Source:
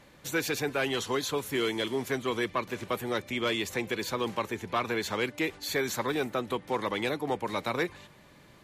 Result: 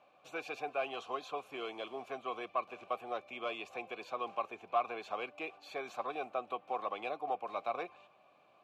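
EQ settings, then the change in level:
formant filter a
+4.0 dB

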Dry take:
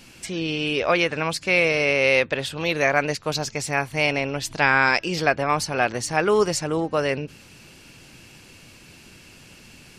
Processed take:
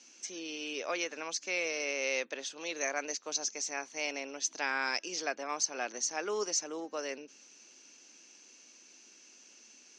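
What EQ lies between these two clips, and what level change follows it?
Butterworth high-pass 240 Hz 36 dB per octave
transistor ladder low-pass 6,400 Hz, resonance 85%
−2.5 dB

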